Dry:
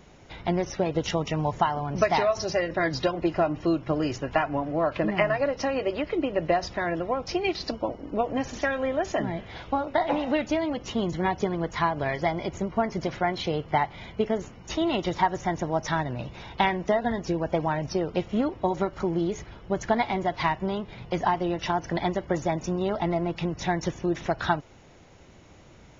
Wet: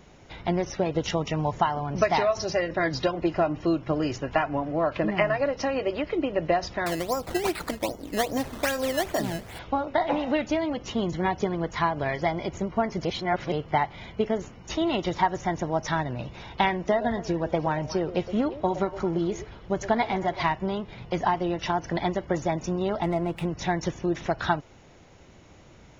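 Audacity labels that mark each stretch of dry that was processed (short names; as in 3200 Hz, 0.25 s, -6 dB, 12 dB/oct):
6.860000	9.590000	decimation with a swept rate 13× 2.5 Hz
13.050000	13.520000	reverse
16.750000	20.530000	delay with a stepping band-pass 0.117 s, band-pass from 510 Hz, each repeat 1.4 oct, level -9.5 dB
23.030000	23.470000	median filter over 9 samples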